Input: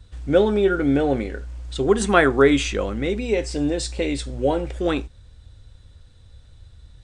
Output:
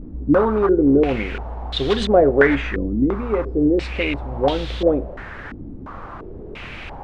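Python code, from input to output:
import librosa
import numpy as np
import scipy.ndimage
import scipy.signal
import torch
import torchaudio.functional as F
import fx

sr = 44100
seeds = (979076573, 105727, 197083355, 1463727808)

p1 = fx.low_shelf(x, sr, hz=74.0, db=6.0)
p2 = (np.mod(10.0 ** (11.5 / 20.0) * p1 + 1.0, 2.0) - 1.0) / 10.0 ** (11.5 / 20.0)
p3 = p1 + (p2 * 10.0 ** (-10.5 / 20.0))
p4 = fx.dmg_noise_colour(p3, sr, seeds[0], colour='pink', level_db=-33.0)
p5 = fx.vibrato(p4, sr, rate_hz=0.58, depth_cents=58.0)
p6 = fx.filter_held_lowpass(p5, sr, hz=2.9, low_hz=280.0, high_hz=3600.0)
y = p6 * 10.0 ** (-3.0 / 20.0)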